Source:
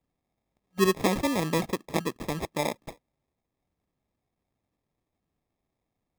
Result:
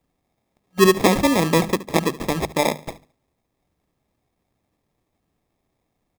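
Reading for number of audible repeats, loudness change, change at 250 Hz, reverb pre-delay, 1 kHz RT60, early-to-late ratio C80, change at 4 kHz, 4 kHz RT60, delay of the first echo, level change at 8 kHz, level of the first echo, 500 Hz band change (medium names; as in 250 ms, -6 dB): 2, +9.0 dB, +8.5 dB, no reverb, no reverb, no reverb, +9.0 dB, no reverb, 72 ms, +9.0 dB, -18.0 dB, +9.0 dB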